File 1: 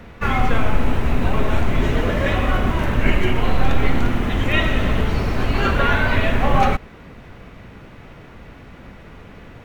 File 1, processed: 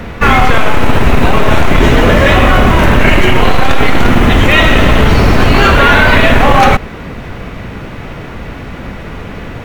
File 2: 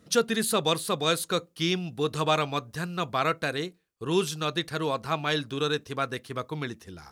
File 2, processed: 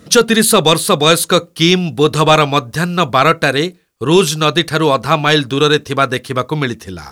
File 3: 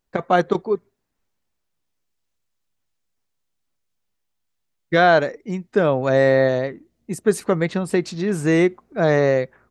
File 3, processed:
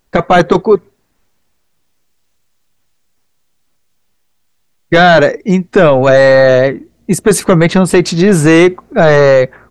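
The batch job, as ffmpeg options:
ffmpeg -i in.wav -af "apsyclip=17.5dB,volume=-1.5dB" out.wav

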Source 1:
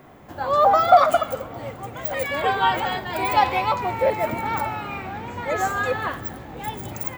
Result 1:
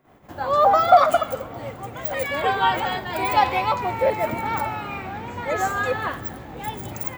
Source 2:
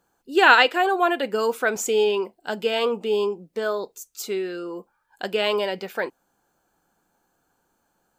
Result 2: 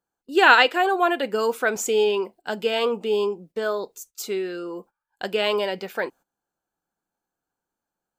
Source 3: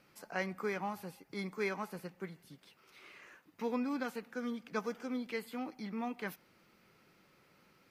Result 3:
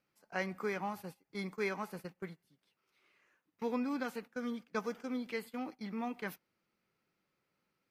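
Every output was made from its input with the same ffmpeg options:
ffmpeg -i in.wav -af "agate=range=-16dB:threshold=-46dB:ratio=16:detection=peak" out.wav

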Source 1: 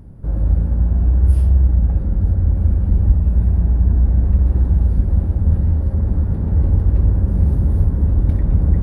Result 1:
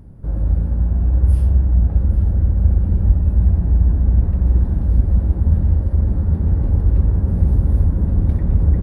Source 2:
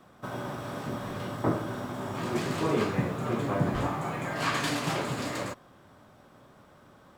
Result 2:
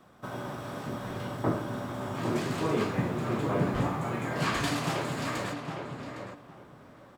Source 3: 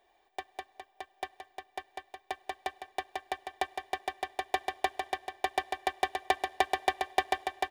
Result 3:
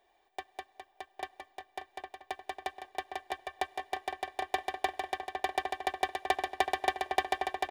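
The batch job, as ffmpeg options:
ffmpeg -i in.wav -filter_complex "[0:a]asplit=2[link_01][link_02];[link_02]adelay=809,lowpass=frequency=2100:poles=1,volume=-5dB,asplit=2[link_03][link_04];[link_04]adelay=809,lowpass=frequency=2100:poles=1,volume=0.21,asplit=2[link_05][link_06];[link_06]adelay=809,lowpass=frequency=2100:poles=1,volume=0.21[link_07];[link_01][link_03][link_05][link_07]amix=inputs=4:normalize=0,volume=-1.5dB" out.wav

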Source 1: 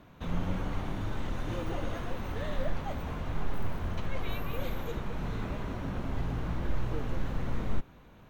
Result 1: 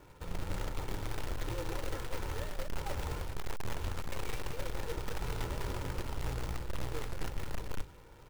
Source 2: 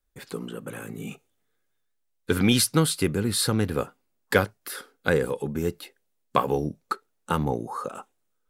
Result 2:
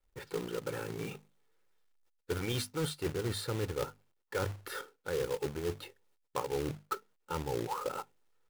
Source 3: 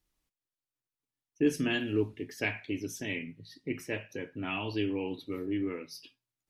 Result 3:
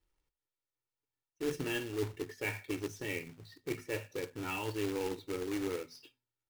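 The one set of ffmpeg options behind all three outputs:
ffmpeg -i in.wav -af "lowpass=frequency=2100:poles=1,bandreject=frequency=50:width_type=h:width=6,bandreject=frequency=100:width_type=h:width=6,bandreject=frequency=150:width_type=h:width=6,bandreject=frequency=200:width_type=h:width=6,bandreject=frequency=250:width_type=h:width=6,aecho=1:1:2.2:0.68,areverse,acompressor=threshold=-30dB:ratio=10,areverse,acrusher=bits=2:mode=log:mix=0:aa=0.000001,volume=-1.5dB" out.wav

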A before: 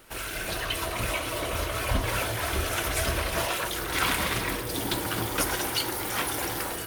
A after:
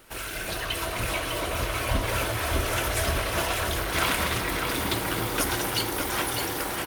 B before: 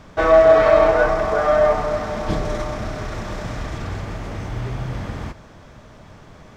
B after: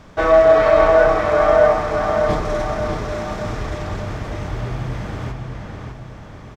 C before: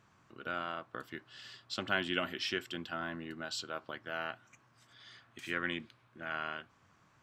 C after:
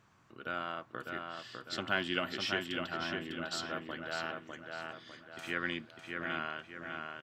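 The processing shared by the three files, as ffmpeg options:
ffmpeg -i in.wav -filter_complex "[0:a]asplit=2[link_01][link_02];[link_02]adelay=602,lowpass=frequency=4500:poles=1,volume=-4dB,asplit=2[link_03][link_04];[link_04]adelay=602,lowpass=frequency=4500:poles=1,volume=0.45,asplit=2[link_05][link_06];[link_06]adelay=602,lowpass=frequency=4500:poles=1,volume=0.45,asplit=2[link_07][link_08];[link_08]adelay=602,lowpass=frequency=4500:poles=1,volume=0.45,asplit=2[link_09][link_10];[link_10]adelay=602,lowpass=frequency=4500:poles=1,volume=0.45,asplit=2[link_11][link_12];[link_12]adelay=602,lowpass=frequency=4500:poles=1,volume=0.45[link_13];[link_01][link_03][link_05][link_07][link_09][link_11][link_13]amix=inputs=7:normalize=0" out.wav

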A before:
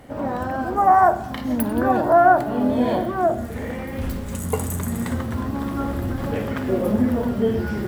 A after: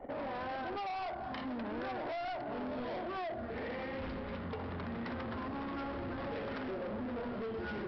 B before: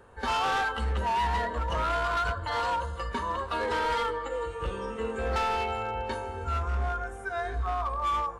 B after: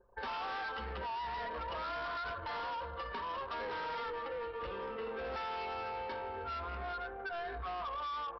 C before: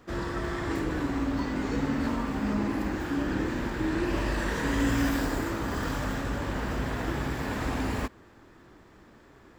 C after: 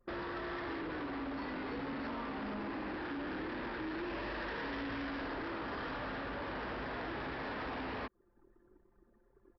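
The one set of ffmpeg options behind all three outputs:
ffmpeg -i in.wav -filter_complex "[0:a]bass=frequency=250:gain=-12,treble=frequency=4000:gain=-3,acrossover=split=120|4000[link_01][link_02][link_03];[link_02]acompressor=threshold=-27dB:ratio=4[link_04];[link_03]acompressor=threshold=-56dB:ratio=4[link_05];[link_01][link_04][link_05]amix=inputs=3:normalize=0,anlmdn=0.0631,aresample=11025,asoftclip=type=tanh:threshold=-33.5dB,aresample=44100,acompressor=threshold=-54dB:ratio=2.5,volume=9dB" out.wav

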